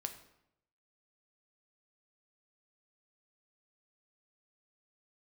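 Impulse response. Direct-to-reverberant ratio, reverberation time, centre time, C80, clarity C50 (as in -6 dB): 6.0 dB, 0.80 s, 12 ms, 13.0 dB, 10.5 dB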